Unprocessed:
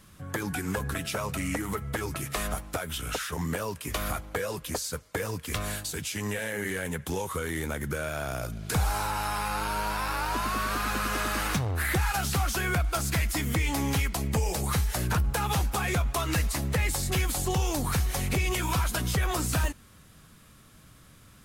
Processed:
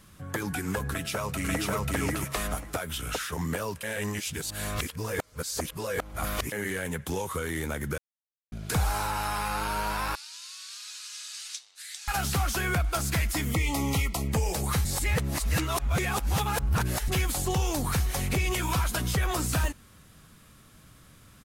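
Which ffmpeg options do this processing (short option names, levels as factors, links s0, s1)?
-filter_complex "[0:a]asplit=2[s0][s1];[s1]afade=t=in:st=0.9:d=0.01,afade=t=out:st=1.7:d=0.01,aecho=0:1:540|1080|1620:0.944061|0.141609|0.0212414[s2];[s0][s2]amix=inputs=2:normalize=0,asettb=1/sr,asplit=3[s3][s4][s5];[s3]atrim=end=10.154[s6];[s4]atrim=start=10.15:end=12.08,asetpts=PTS-STARTPTS,afade=t=in:d=0.004:c=qsin,afade=t=out:st=1.926:d=0.004:c=qsin,asuperpass=centerf=5700:order=4:qfactor=1.2[s7];[s5]atrim=start=12.076[s8];[s6][s7]acrossfade=d=0.004:c1=hsin:c2=qsin[s9];[s9][s8]acrossfade=d=0.004:c1=qsin:c2=hsin,asettb=1/sr,asplit=3[s10][s11][s12];[s10]atrim=end=13.514[s13];[s11]atrim=start=13.51:end=14.29,asetpts=PTS-STARTPTS,afade=t=in:d=0.004:c=qsin,afade=t=out:st=0.776:d=0.004:c=qsin,asuperstop=centerf=1600:order=20:qfactor=3.4[s14];[s12]atrim=start=14.286[s15];[s13][s14]acrossfade=d=0.004:c1=hsin:c2=qsin[s16];[s16][s15]acrossfade=d=0.004:c1=qsin:c2=hsin,asplit=7[s17][s18][s19][s20][s21][s22][s23];[s17]atrim=end=3.832[s24];[s18]atrim=start=3.828:end=6.522,asetpts=PTS-STARTPTS,areverse[s25];[s19]atrim=start=6.518:end=7.98,asetpts=PTS-STARTPTS,afade=t=out:st=1.458:d=0.004:c=hsin[s26];[s20]atrim=start=7.98:end=8.52,asetpts=PTS-STARTPTS,volume=0[s27];[s21]atrim=start=8.52:end=14.852,asetpts=PTS-STARTPTS,afade=t=in:d=0.004:c=hsin[s28];[s22]atrim=start=14.848:end=17.082,asetpts=PTS-STARTPTS,areverse[s29];[s23]atrim=start=17.078[s30];[s24][s25]acrossfade=d=0.004:c1=hsin:c2=hsin[s31];[s26][s27][s28]concat=n=3:v=0:a=1[s32];[s31][s32]acrossfade=d=0.004:c1=hsin:c2=hsin[s33];[s33][s29]acrossfade=d=0.004:c1=hsin:c2=hsin[s34];[s34][s30]acrossfade=d=0.004:c1=hsin:c2=hsin"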